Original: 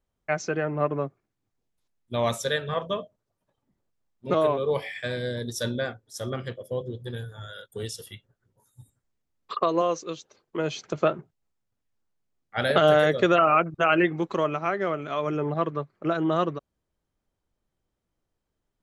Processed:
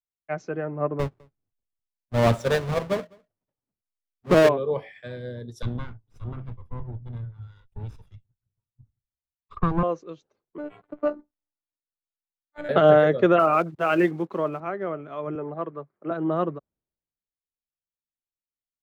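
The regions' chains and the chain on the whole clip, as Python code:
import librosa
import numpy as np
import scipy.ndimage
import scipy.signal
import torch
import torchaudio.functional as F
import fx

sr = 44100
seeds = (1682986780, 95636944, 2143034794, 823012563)

y = fx.chain(x, sr, fx.halfwave_hold(),
    fx.echo_single(ms=207, db=-23.0), at=(0.99, 4.49))
y = fx.chain(y, sr, fx.lower_of_two(delay_ms=0.81),
    fx.bass_treble(bass_db=5, treble_db=-5), at=(5.62, 9.83))
y = fx.chain(y, sr, fx.robotise(hz=295.0),
    fx.resample_linear(factor=8), at=(10.58, 12.69))
y = fx.chain(y, sr, fx.block_float(bits=5),
    fx.highpass(hz=89.0, slope=12), at=(13.39, 14.6))
y = fx.chain(y, sr, fx.low_shelf(hz=160.0, db=-11.5),
    fx.band_squash(depth_pct=40), at=(15.35, 16.11))
y = fx.lowpass(y, sr, hz=1000.0, slope=6)
y = fx.band_widen(y, sr, depth_pct=70)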